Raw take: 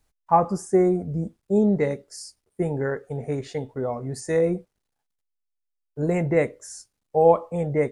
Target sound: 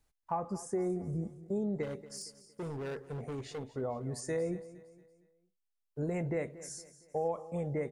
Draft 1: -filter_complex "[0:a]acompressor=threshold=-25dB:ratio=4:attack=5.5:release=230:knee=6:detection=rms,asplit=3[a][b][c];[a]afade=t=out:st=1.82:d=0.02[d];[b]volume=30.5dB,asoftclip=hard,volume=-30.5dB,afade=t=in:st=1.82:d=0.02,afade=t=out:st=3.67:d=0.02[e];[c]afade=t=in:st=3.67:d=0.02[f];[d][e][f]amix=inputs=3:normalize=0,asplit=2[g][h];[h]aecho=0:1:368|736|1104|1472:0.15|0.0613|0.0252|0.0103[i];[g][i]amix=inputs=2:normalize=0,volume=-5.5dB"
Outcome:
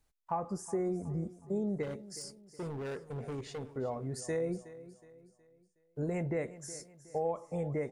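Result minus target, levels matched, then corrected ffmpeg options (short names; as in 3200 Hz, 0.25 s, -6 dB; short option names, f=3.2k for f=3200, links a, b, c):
echo 0.137 s late
-filter_complex "[0:a]acompressor=threshold=-25dB:ratio=4:attack=5.5:release=230:knee=6:detection=rms,asplit=3[a][b][c];[a]afade=t=out:st=1.82:d=0.02[d];[b]volume=30.5dB,asoftclip=hard,volume=-30.5dB,afade=t=in:st=1.82:d=0.02,afade=t=out:st=3.67:d=0.02[e];[c]afade=t=in:st=3.67:d=0.02[f];[d][e][f]amix=inputs=3:normalize=0,asplit=2[g][h];[h]aecho=0:1:231|462|693|924:0.15|0.0613|0.0252|0.0103[i];[g][i]amix=inputs=2:normalize=0,volume=-5.5dB"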